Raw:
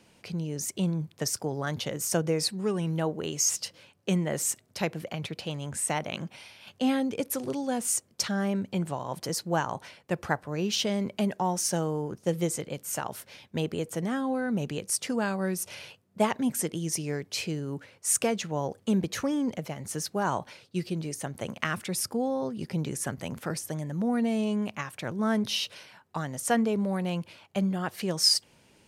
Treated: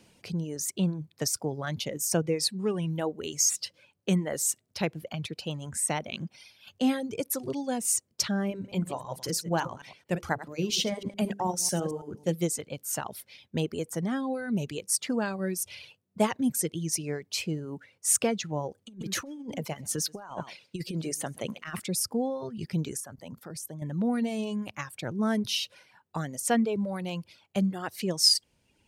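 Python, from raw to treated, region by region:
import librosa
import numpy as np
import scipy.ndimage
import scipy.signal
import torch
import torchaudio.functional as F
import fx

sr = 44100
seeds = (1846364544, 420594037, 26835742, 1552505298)

y = fx.chain(x, sr, fx.reverse_delay(ms=110, wet_db=-7.5),
    fx.hum_notches(base_hz=50, count=10), at=(8.5, 12.32))
y = fx.chain(y, sr, fx.highpass(hz=170.0, slope=6),
    fx.echo_single(ms=131, db=-14.5),
    fx.over_compress(threshold_db=-33.0, ratio=-0.5), at=(18.86, 21.8))
y = fx.chain(y, sr, fx.highpass(hz=61.0, slope=6),
    fx.peak_eq(hz=2400.0, db=-6.0, octaves=1.3),
    fx.level_steps(step_db=10), at=(23.0, 23.82))
y = fx.peak_eq(y, sr, hz=1200.0, db=-4.0, octaves=2.4)
y = fx.dereverb_blind(y, sr, rt60_s=1.4)
y = y * librosa.db_to_amplitude(2.0)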